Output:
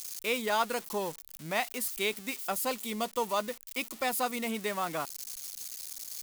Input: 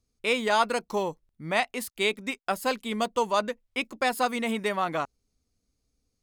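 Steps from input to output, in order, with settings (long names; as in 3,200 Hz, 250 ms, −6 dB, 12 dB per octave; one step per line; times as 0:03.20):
spike at every zero crossing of −25 dBFS
0:02.32–0:04.43: notch filter 1,600 Hz, Q 10
level −5.5 dB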